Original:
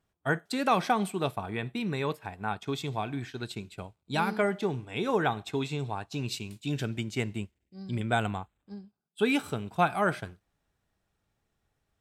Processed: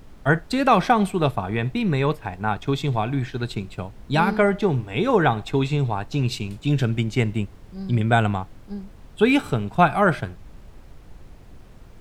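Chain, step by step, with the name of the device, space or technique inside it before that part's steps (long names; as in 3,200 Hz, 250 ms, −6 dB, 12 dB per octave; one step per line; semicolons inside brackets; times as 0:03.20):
car interior (parametric band 130 Hz +4.5 dB 0.74 octaves; high-shelf EQ 4,600 Hz −8 dB; brown noise bed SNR 19 dB)
level +8.5 dB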